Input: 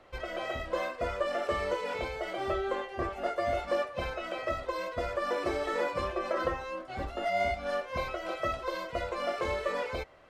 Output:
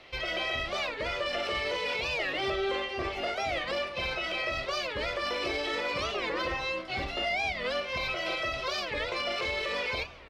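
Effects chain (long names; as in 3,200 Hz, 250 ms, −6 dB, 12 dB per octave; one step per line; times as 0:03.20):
flat-topped bell 3,400 Hz +12.5 dB
brickwall limiter −25 dBFS, peak gain reduction 10 dB
harmonic generator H 4 −35 dB, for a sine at −25 dBFS
double-tracking delay 38 ms −13 dB
on a send at −10 dB: convolution reverb RT60 1.4 s, pre-delay 4 ms
on the sum: wow of a warped record 45 rpm, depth 250 cents
level +1.5 dB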